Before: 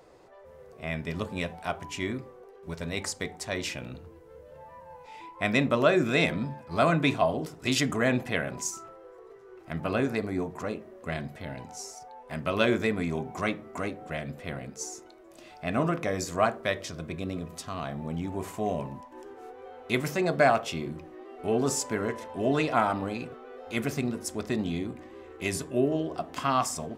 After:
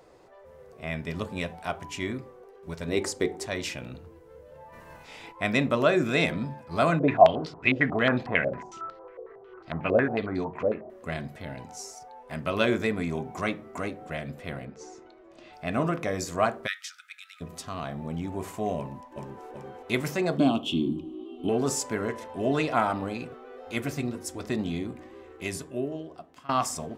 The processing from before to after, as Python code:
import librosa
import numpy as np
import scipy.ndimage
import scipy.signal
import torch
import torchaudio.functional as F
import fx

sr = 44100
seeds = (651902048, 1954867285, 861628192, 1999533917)

y = fx.peak_eq(x, sr, hz=360.0, db=14.5, octaves=0.79, at=(2.88, 3.46))
y = fx.spec_clip(y, sr, under_db=22, at=(4.72, 5.31), fade=0.02)
y = fx.filter_held_lowpass(y, sr, hz=11.0, low_hz=550.0, high_hz=4300.0, at=(6.99, 10.9))
y = fx.lowpass(y, sr, hz=fx.line((14.64, 2600.0), (15.52, 4800.0)), slope=12, at=(14.64, 15.52), fade=0.02)
y = fx.brickwall_highpass(y, sr, low_hz=1200.0, at=(16.66, 17.4), fade=0.02)
y = fx.echo_throw(y, sr, start_s=18.78, length_s=0.66, ms=380, feedback_pct=55, wet_db=-3.5)
y = fx.curve_eq(y, sr, hz=(130.0, 300.0, 480.0, 1100.0, 1900.0, 3100.0, 4900.0, 8000.0), db=(0, 14, -9, -6, -29, 12, -10, -6), at=(20.38, 21.49))
y = fx.notch_comb(y, sr, f0_hz=210.0, at=(23.78, 24.44))
y = fx.edit(y, sr, fx.fade_out_to(start_s=25.06, length_s=1.43, floor_db=-22.0), tone=tone)